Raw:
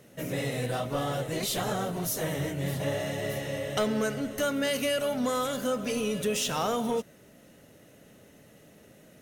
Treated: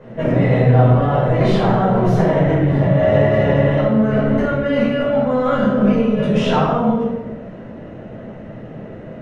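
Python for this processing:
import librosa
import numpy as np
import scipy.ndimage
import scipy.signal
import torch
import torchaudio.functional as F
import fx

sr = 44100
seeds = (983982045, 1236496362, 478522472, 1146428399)

y = scipy.signal.sosfilt(scipy.signal.butter(2, 1400.0, 'lowpass', fs=sr, output='sos'), x)
y = fx.over_compress(y, sr, threshold_db=-34.0, ratio=-1.0)
y = fx.room_shoebox(y, sr, seeds[0], volume_m3=350.0, walls='mixed', distance_m=5.1)
y = y * 10.0 ** (5.0 / 20.0)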